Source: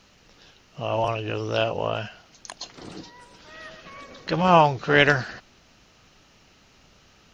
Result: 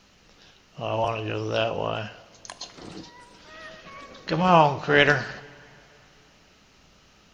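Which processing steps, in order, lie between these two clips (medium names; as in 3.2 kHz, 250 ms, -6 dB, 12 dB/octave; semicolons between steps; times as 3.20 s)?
vibrato 9.8 Hz 12 cents; two-slope reverb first 0.6 s, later 3.2 s, from -18 dB, DRR 11.5 dB; trim -1 dB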